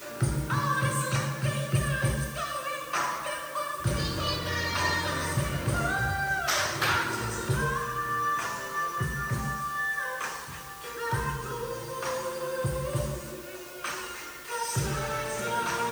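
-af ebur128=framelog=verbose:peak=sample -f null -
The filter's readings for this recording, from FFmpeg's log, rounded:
Integrated loudness:
  I:         -29.8 LUFS
  Threshold: -39.9 LUFS
Loudness range:
  LRA:         5.4 LU
  Threshold: -49.9 LUFS
  LRA low:   -33.0 LUFS
  LRA high:  -27.6 LUFS
Sample peak:
  Peak:      -13.6 dBFS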